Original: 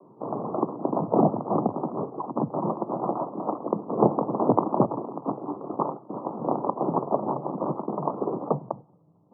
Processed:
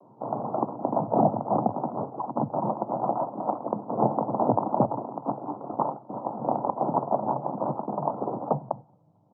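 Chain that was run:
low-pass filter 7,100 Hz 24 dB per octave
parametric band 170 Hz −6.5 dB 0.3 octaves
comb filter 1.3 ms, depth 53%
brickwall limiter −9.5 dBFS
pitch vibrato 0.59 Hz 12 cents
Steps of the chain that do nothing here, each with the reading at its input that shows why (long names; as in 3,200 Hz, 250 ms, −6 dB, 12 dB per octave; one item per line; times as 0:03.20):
low-pass filter 7,100 Hz: nothing at its input above 1,400 Hz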